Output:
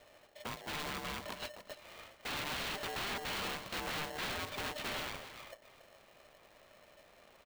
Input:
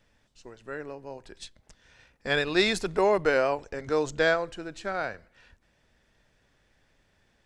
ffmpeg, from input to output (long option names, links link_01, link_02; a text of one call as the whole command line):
ffmpeg -i in.wav -af "acompressor=threshold=-36dB:ratio=5,aresample=8000,aeval=exprs='(mod(89.1*val(0)+1,2)-1)/89.1':channel_layout=same,aresample=44100,aecho=1:1:281:0.266,aeval=exprs='val(0)*sgn(sin(2*PI*600*n/s))':channel_layout=same,volume=5dB" out.wav